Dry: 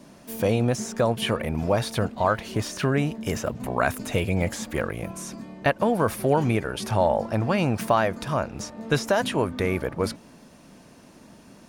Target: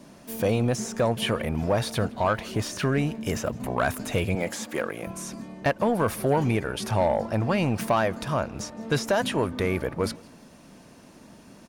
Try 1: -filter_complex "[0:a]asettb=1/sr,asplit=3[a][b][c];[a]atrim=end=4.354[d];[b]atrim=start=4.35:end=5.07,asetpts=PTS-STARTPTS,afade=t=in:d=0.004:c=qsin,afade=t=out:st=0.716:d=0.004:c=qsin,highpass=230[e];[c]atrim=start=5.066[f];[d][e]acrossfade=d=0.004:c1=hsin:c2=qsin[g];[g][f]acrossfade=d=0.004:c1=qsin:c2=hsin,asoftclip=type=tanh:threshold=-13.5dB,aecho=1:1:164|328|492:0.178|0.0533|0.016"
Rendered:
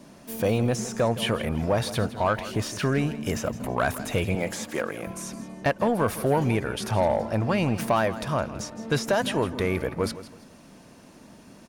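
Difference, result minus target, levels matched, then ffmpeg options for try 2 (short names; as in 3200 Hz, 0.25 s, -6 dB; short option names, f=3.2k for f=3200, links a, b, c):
echo-to-direct +10.5 dB
-filter_complex "[0:a]asettb=1/sr,asplit=3[a][b][c];[a]atrim=end=4.354[d];[b]atrim=start=4.35:end=5.07,asetpts=PTS-STARTPTS,afade=t=in:d=0.004:c=qsin,afade=t=out:st=0.716:d=0.004:c=qsin,highpass=230[e];[c]atrim=start=5.066[f];[d][e]acrossfade=d=0.004:c1=hsin:c2=qsin[g];[g][f]acrossfade=d=0.004:c1=qsin:c2=hsin,asoftclip=type=tanh:threshold=-13.5dB,aecho=1:1:164|328:0.0531|0.0159"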